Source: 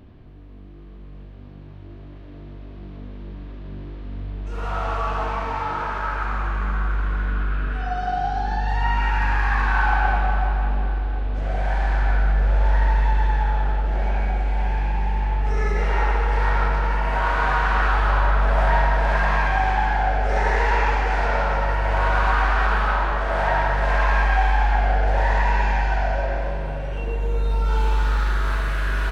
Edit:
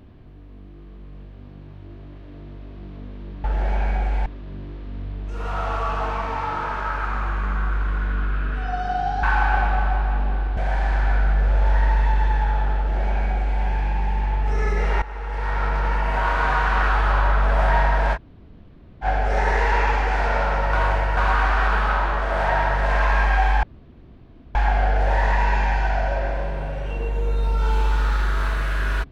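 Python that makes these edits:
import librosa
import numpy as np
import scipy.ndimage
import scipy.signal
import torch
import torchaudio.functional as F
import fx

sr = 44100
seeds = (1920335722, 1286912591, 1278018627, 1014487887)

y = fx.edit(x, sr, fx.cut(start_s=8.41, length_s=1.33),
    fx.cut(start_s=11.08, length_s=0.48),
    fx.duplicate(start_s=13.78, length_s=0.82, to_s=3.44),
    fx.fade_in_from(start_s=16.01, length_s=0.86, floor_db=-18.0),
    fx.room_tone_fill(start_s=19.14, length_s=0.89, crossfade_s=0.06),
    fx.reverse_span(start_s=21.72, length_s=0.44),
    fx.insert_room_tone(at_s=24.62, length_s=0.92), tone=tone)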